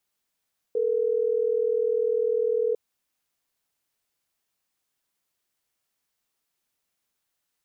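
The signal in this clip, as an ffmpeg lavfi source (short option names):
-f lavfi -i "aevalsrc='0.0631*(sin(2*PI*440*t)+sin(2*PI*480*t))*clip(min(mod(t,6),2-mod(t,6))/0.005,0,1)':d=3.12:s=44100"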